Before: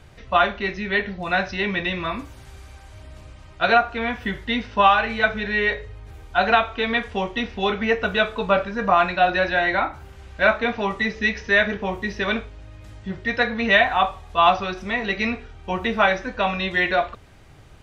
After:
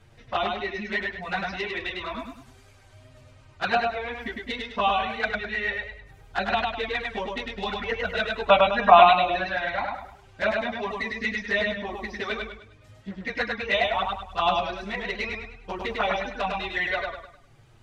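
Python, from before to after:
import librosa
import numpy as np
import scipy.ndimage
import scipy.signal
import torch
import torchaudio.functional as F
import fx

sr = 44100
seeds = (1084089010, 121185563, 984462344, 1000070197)

y = fx.dereverb_blind(x, sr, rt60_s=0.72)
y = fx.spec_box(y, sr, start_s=8.46, length_s=0.71, low_hz=600.0, high_hz=4000.0, gain_db=12)
y = fx.env_flanger(y, sr, rest_ms=9.5, full_db=-13.0)
y = fx.echo_warbled(y, sr, ms=102, feedback_pct=37, rate_hz=2.8, cents=60, wet_db=-3.0)
y = F.gain(torch.from_numpy(y), -4.0).numpy()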